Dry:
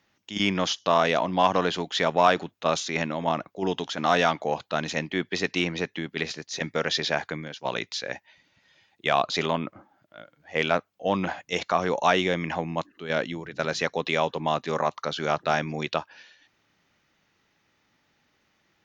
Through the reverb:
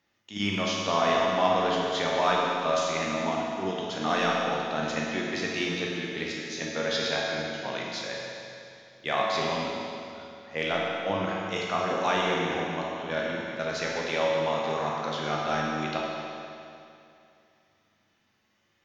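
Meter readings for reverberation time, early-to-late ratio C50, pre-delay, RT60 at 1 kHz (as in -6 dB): 2.6 s, -1.5 dB, 9 ms, 2.6 s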